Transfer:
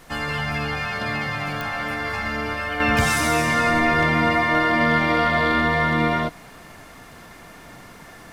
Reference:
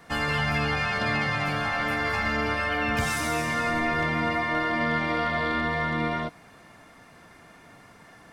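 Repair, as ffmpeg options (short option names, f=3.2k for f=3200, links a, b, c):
-af "adeclick=t=4,agate=range=-21dB:threshold=-36dB,asetnsamples=n=441:p=0,asendcmd='2.8 volume volume -7dB',volume=0dB"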